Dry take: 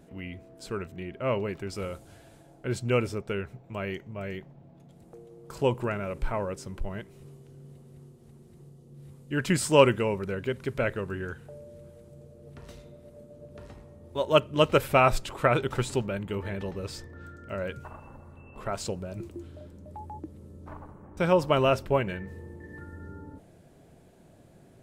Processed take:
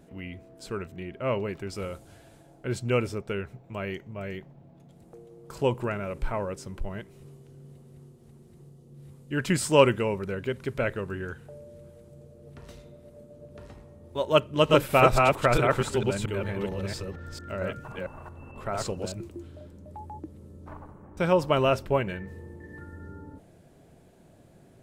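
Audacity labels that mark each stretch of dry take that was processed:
14.450000	19.120000	reverse delay 0.226 s, level -1 dB

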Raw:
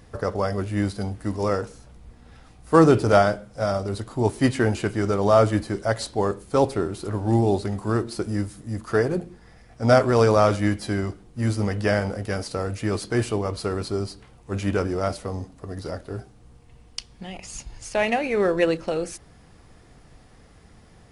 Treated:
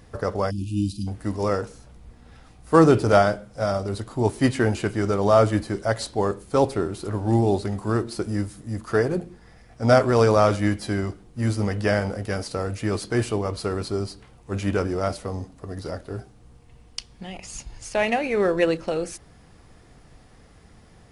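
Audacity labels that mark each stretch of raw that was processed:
0.510000	1.070000	spectral delete 350–2400 Hz

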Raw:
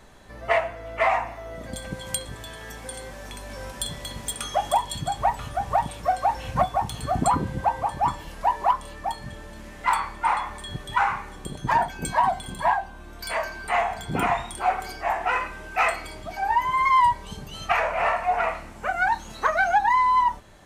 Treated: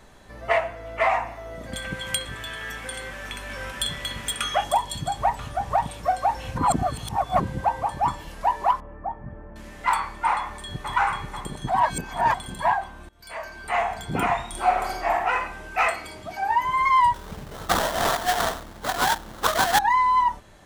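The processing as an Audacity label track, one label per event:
1.720000	4.640000	band shelf 2000 Hz +8.5 dB
5.290000	5.870000	Doppler distortion depth 0.19 ms
6.580000	7.400000	reverse
8.800000	9.560000	Gaussian blur sigma 5.8 samples
10.350000	10.910000	echo throw 0.49 s, feedback 70%, level -4.5 dB
11.690000	12.340000	reverse
13.090000	13.850000	fade in, from -23 dB
14.480000	15.130000	reverb throw, RT60 0.93 s, DRR 0.5 dB
15.880000	16.640000	HPF 78 Hz
17.140000	19.790000	sample-rate reducer 2500 Hz, jitter 20%

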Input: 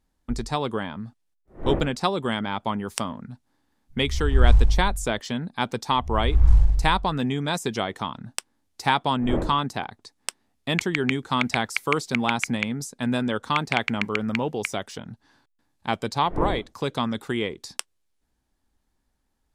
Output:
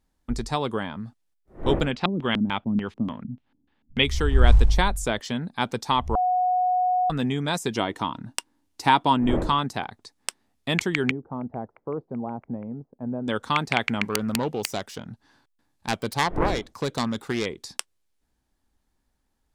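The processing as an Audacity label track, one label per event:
1.910000	4.040000	LFO low-pass square 3.4 Hz 240–2900 Hz
6.150000	7.100000	bleep 731 Hz -19 dBFS
7.740000	9.310000	small resonant body resonances 300/950/2800 Hz, height 8 dB
11.110000	13.280000	ladder low-pass 870 Hz, resonance 25%
14.020000	17.460000	self-modulated delay depth 0.34 ms

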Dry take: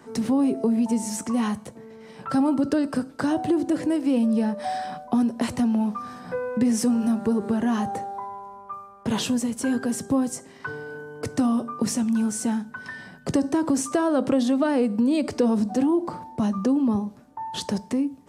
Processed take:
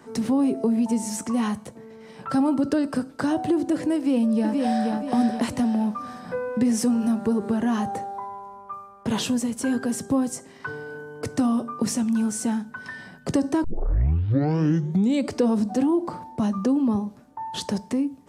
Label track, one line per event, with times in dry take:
3.960000	4.920000	echo throw 0.48 s, feedback 40%, level -3 dB
13.640000	13.640000	tape start 1.66 s

